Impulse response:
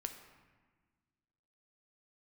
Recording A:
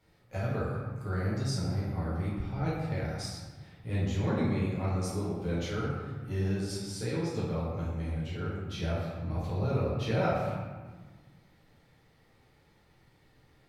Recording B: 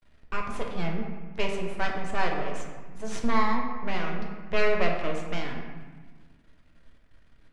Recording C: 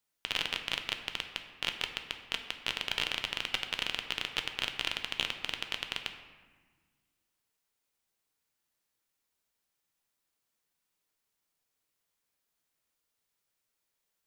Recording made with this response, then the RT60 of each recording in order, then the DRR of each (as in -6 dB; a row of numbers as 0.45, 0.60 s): C; 1.4, 1.4, 1.4 s; -9.0, 0.5, 5.5 dB